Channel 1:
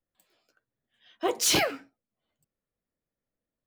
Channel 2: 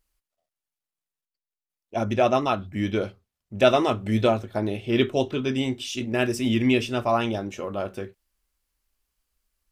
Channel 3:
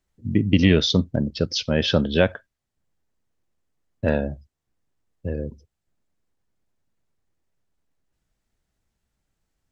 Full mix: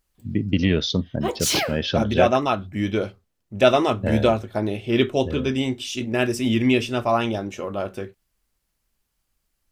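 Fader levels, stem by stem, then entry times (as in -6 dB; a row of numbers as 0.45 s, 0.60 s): +1.0 dB, +2.0 dB, -3.5 dB; 0.00 s, 0.00 s, 0.00 s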